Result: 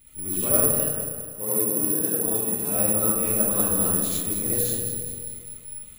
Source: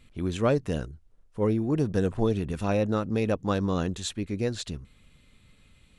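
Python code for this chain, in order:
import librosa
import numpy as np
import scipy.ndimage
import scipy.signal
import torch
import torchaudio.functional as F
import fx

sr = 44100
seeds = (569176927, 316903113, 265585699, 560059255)

y = fx.law_mismatch(x, sr, coded='mu')
y = fx.highpass(y, sr, hz=240.0, slope=6, at=(0.66, 2.7))
y = fx.echo_feedback(y, sr, ms=203, feedback_pct=53, wet_db=-11)
y = fx.rev_freeverb(y, sr, rt60_s=1.2, hf_ratio=0.45, predelay_ms=30, drr_db=-9.5)
y = (np.kron(y[::4], np.eye(4)[0]) * 4)[:len(y)]
y = F.gain(torch.from_numpy(y), -13.0).numpy()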